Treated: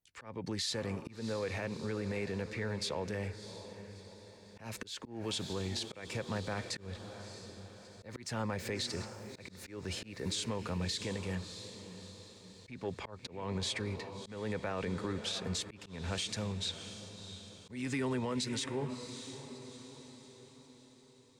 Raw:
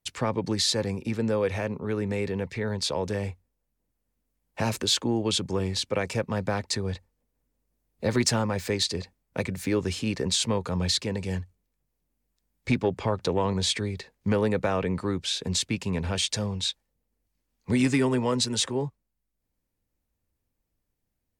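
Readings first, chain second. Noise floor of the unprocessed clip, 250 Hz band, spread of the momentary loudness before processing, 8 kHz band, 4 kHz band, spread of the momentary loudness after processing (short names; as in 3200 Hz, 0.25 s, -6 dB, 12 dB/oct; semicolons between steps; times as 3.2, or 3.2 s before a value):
-80 dBFS, -11.5 dB, 8 LU, -11.5 dB, -10.5 dB, 15 LU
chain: on a send: diffused feedback echo 0.656 s, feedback 50%, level -12.5 dB; on the sum: dynamic EQ 1900 Hz, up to +4 dB, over -44 dBFS, Q 1.1; limiter -19.5 dBFS, peak gain reduction 7 dB; auto swell 0.233 s; gain -7.5 dB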